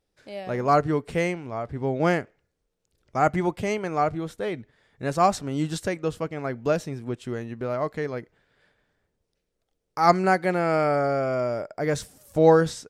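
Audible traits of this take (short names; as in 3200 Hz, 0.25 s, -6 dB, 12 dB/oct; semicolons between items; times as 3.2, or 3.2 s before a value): noise floor -78 dBFS; spectral tilt -5.5 dB/oct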